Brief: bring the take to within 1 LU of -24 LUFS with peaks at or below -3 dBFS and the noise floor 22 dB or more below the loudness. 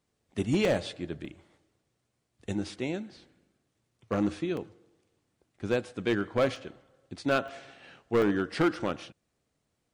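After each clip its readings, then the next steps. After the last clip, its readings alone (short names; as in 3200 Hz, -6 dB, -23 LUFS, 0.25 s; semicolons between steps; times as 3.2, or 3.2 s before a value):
clipped 0.6%; flat tops at -19.0 dBFS; dropouts 7; longest dropout 1.8 ms; loudness -30.5 LUFS; peak -19.0 dBFS; loudness target -24.0 LUFS
-> clip repair -19 dBFS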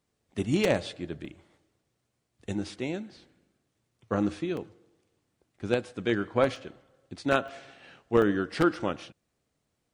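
clipped 0.0%; dropouts 7; longest dropout 1.8 ms
-> interpolate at 0.65/1.25/4.57/6.56/7.48/8.22/8.74, 1.8 ms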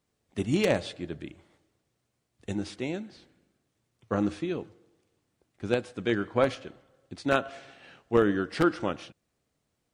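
dropouts 0; loudness -29.5 LUFS; peak -10.0 dBFS; loudness target -24.0 LUFS
-> gain +5.5 dB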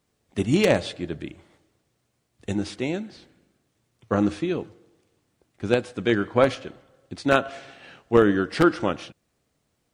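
loudness -24.0 LUFS; peak -4.5 dBFS; noise floor -73 dBFS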